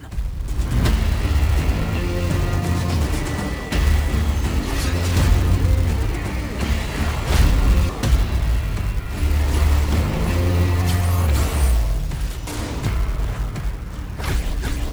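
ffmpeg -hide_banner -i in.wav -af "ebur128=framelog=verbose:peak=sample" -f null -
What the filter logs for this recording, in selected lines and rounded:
Integrated loudness:
  I:         -21.4 LUFS
  Threshold: -31.4 LUFS
Loudness range:
  LRA:         2.3 LU
  Threshold: -41.0 LUFS
  LRA low:   -22.4 LUFS
  LRA high:  -20.1 LUFS
Sample peak:
  Peak:       -6.6 dBFS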